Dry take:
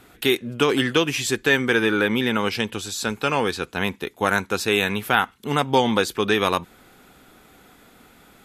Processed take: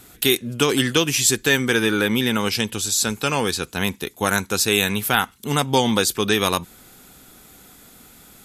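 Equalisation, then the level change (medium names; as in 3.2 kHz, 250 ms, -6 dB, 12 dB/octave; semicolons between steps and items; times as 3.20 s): tone controls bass +5 dB, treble +13 dB; -1.0 dB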